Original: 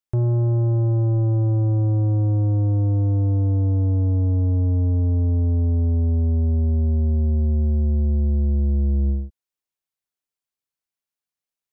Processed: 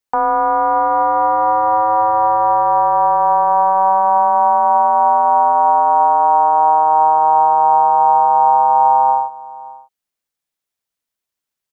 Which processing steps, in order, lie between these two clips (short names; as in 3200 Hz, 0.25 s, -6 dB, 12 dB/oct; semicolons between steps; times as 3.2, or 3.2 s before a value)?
comb 3.2 ms, depth 53%; ring modulator 860 Hz; outdoor echo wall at 100 m, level -20 dB; gain +8.5 dB